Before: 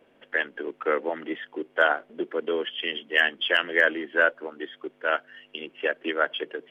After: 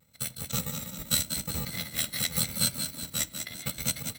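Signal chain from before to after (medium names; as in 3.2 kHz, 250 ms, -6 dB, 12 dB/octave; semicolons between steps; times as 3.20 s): bit-reversed sample order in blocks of 128 samples; tempo 1.6×; low-pass 4 kHz 6 dB/octave; formant shift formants +6 st; bass shelf 400 Hz +5.5 dB; frequency-shifting echo 191 ms, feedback 50%, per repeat +32 Hz, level -7 dB; on a send at -16 dB: reverberation RT60 0.35 s, pre-delay 5 ms; on the sum: vibrato 0.84 Hz 40 cents; high-pass 59 Hz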